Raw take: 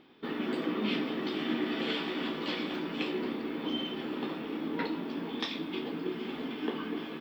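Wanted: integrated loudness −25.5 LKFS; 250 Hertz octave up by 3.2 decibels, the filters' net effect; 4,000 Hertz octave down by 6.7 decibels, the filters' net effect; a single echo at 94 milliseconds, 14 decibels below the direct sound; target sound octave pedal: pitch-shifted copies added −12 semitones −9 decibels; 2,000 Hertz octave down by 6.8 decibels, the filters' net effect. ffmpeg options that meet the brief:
ffmpeg -i in.wav -filter_complex "[0:a]equalizer=frequency=250:width_type=o:gain=4,equalizer=frequency=2000:width_type=o:gain=-7,equalizer=frequency=4000:width_type=o:gain=-6,aecho=1:1:94:0.2,asplit=2[link_01][link_02];[link_02]asetrate=22050,aresample=44100,atempo=2,volume=-9dB[link_03];[link_01][link_03]amix=inputs=2:normalize=0,volume=7dB" out.wav

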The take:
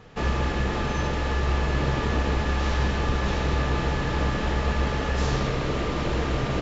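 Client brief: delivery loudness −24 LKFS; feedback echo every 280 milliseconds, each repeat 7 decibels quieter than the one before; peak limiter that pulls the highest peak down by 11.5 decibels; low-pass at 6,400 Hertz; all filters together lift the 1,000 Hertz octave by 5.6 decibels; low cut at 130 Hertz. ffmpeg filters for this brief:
ffmpeg -i in.wav -af "highpass=130,lowpass=6400,equalizer=frequency=1000:width_type=o:gain=7,alimiter=limit=-24dB:level=0:latency=1,aecho=1:1:280|560|840|1120|1400:0.447|0.201|0.0905|0.0407|0.0183,volume=7.5dB" out.wav

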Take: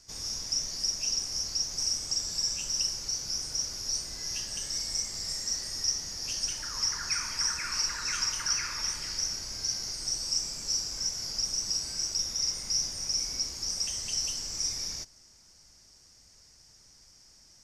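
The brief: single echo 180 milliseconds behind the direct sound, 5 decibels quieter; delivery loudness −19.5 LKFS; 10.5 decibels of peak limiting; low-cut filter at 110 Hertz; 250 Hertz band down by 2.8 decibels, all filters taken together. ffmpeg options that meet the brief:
ffmpeg -i in.wav -af "highpass=110,equalizer=frequency=250:width_type=o:gain=-3.5,alimiter=level_in=1.5dB:limit=-24dB:level=0:latency=1,volume=-1.5dB,aecho=1:1:180:0.562,volume=12dB" out.wav

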